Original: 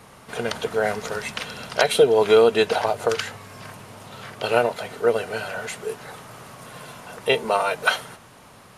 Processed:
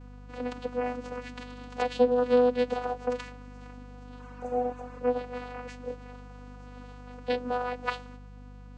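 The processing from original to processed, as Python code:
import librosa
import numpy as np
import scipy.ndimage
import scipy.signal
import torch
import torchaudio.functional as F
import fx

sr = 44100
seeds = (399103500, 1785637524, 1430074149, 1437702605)

y = fx.vocoder(x, sr, bands=8, carrier='saw', carrier_hz=247.0)
y = fx.spec_repair(y, sr, seeds[0], start_s=4.22, length_s=0.76, low_hz=880.0, high_hz=5700.0, source='after')
y = fx.add_hum(y, sr, base_hz=50, snr_db=15)
y = y * 10.0 ** (-7.0 / 20.0)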